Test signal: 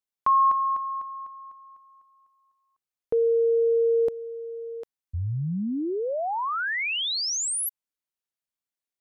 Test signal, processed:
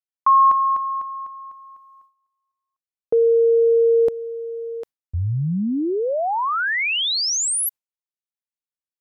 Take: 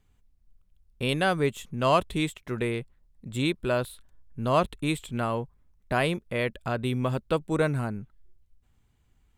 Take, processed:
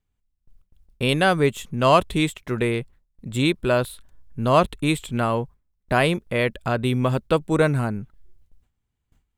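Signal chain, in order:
noise gate with hold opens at −53 dBFS, closes at −54 dBFS, hold 28 ms, range −17 dB
level +6 dB

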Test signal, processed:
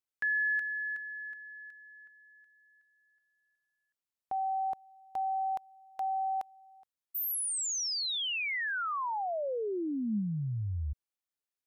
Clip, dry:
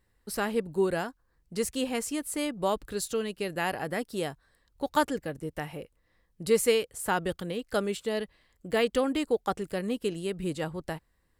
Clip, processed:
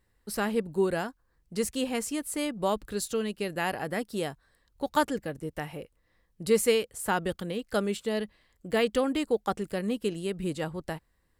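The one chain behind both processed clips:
dynamic equaliser 210 Hz, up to +4 dB, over −49 dBFS, Q 7.3

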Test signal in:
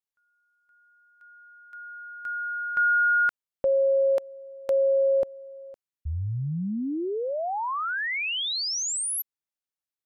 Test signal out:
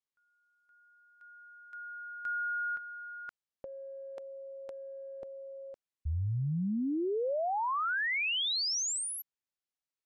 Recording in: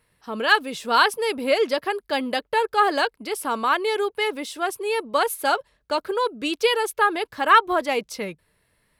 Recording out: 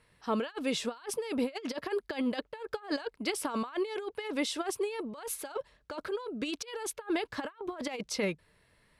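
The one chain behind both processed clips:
compressor whose output falls as the input rises −28 dBFS, ratio −0.5
low-pass filter 8,200 Hz 12 dB per octave
level −5.5 dB

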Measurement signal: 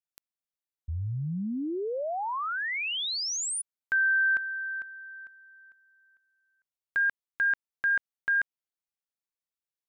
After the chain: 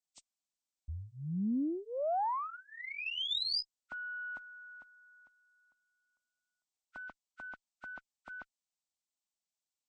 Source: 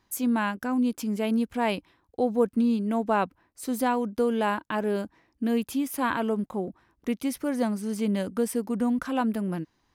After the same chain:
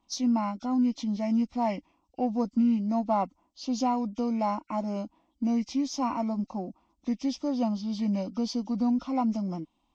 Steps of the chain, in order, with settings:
hearing-aid frequency compression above 1,300 Hz 1.5 to 1
phaser with its sweep stopped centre 430 Hz, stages 6
harmonic generator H 8 −40 dB, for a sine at −15.5 dBFS

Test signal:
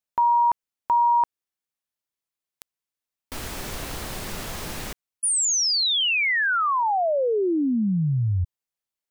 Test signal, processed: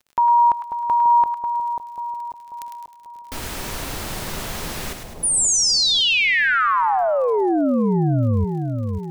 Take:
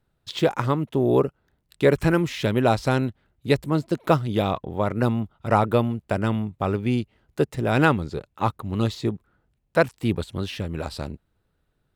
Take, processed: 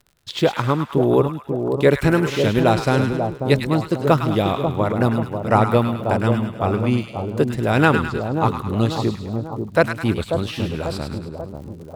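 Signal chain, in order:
surface crackle 34 per second −40 dBFS
echo with a time of its own for lows and highs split 980 Hz, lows 540 ms, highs 104 ms, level −6 dB
level +3 dB

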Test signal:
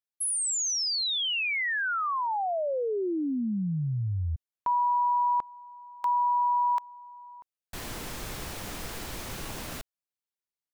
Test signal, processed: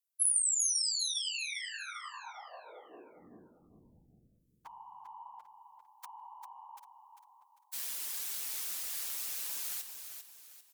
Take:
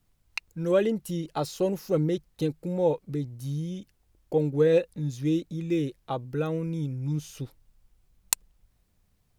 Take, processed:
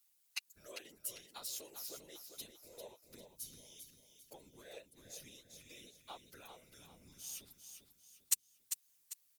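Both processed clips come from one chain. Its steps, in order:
harmonic generator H 5 −27 dB, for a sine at −2 dBFS
downward compressor 3 to 1, threshold −33 dBFS
phases set to zero 133 Hz
first difference
random phases in short frames
on a send: repeating echo 397 ms, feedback 37%, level −8 dB
on the sum: level +4 dB

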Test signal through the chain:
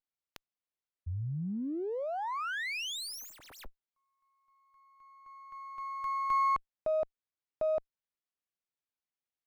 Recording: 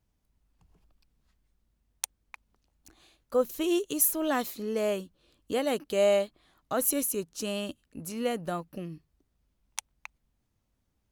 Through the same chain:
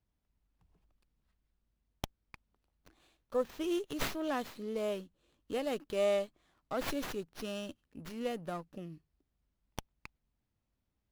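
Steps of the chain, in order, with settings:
windowed peak hold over 5 samples
level −6.5 dB

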